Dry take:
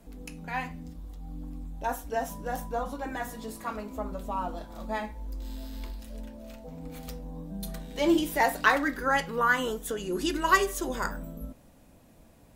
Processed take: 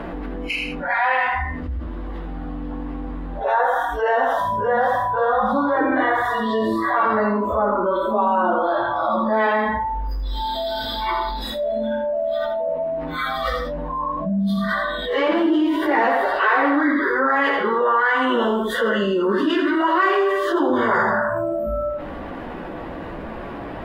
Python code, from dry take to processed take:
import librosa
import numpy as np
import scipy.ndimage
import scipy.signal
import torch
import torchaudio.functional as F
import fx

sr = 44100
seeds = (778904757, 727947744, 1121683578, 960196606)

p1 = fx.bin_compress(x, sr, power=0.6)
p2 = fx.noise_reduce_blind(p1, sr, reduce_db=29)
p3 = fx.dynamic_eq(p2, sr, hz=260.0, q=2.0, threshold_db=-43.0, ratio=4.0, max_db=3)
p4 = fx.rider(p3, sr, range_db=4, speed_s=0.5)
p5 = p3 + (p4 * 10.0 ** (-1.0 / 20.0))
p6 = fx.stretch_vocoder_free(p5, sr, factor=1.9)
p7 = fx.air_absorb(p6, sr, metres=430.0)
p8 = p7 + 10.0 ** (-9.5 / 20.0) * np.pad(p7, (int(81 * sr / 1000.0), 0))[:len(p7)]
y = fx.env_flatten(p8, sr, amount_pct=70)